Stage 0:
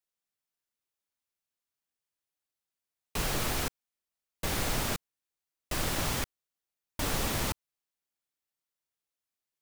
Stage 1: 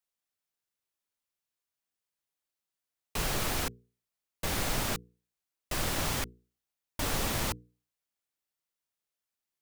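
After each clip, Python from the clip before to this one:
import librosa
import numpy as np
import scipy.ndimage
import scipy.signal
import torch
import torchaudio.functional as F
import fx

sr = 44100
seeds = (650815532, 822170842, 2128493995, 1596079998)

y = fx.hum_notches(x, sr, base_hz=60, count=8)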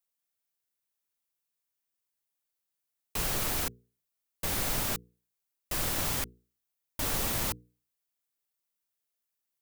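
y = fx.high_shelf(x, sr, hz=9500.0, db=9.5)
y = y * 10.0 ** (-2.0 / 20.0)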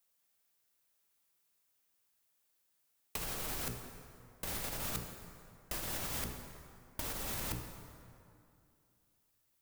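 y = fx.over_compress(x, sr, threshold_db=-36.0, ratio=-0.5)
y = fx.rev_plate(y, sr, seeds[0], rt60_s=2.6, hf_ratio=0.6, predelay_ms=0, drr_db=4.5)
y = y * 10.0 ** (-1.0 / 20.0)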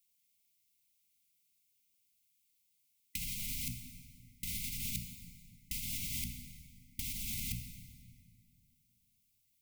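y = fx.brickwall_bandstop(x, sr, low_hz=270.0, high_hz=2000.0)
y = y * 10.0 ** (1.0 / 20.0)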